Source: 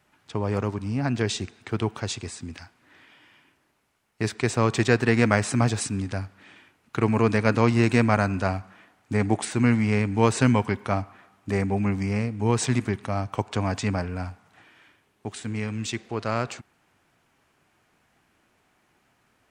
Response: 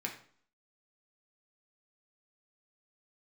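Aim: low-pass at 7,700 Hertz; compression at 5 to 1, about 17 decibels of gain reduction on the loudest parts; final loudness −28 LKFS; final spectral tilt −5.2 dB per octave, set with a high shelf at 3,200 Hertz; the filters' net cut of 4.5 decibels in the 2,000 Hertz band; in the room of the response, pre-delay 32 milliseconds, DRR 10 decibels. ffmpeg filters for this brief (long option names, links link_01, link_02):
-filter_complex "[0:a]lowpass=7700,equalizer=frequency=2000:width_type=o:gain=-8,highshelf=frequency=3200:gain=6.5,acompressor=threshold=-35dB:ratio=5,asplit=2[link_01][link_02];[1:a]atrim=start_sample=2205,adelay=32[link_03];[link_02][link_03]afir=irnorm=-1:irlink=0,volume=-12dB[link_04];[link_01][link_04]amix=inputs=2:normalize=0,volume=10.5dB"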